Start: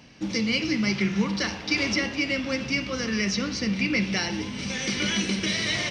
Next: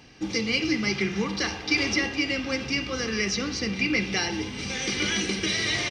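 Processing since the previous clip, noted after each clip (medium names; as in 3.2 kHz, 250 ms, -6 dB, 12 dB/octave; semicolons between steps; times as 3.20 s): comb 2.5 ms, depth 43%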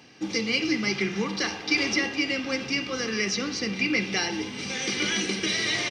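high-pass 150 Hz 12 dB/octave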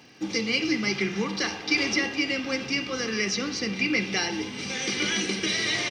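crackle 130 per s -52 dBFS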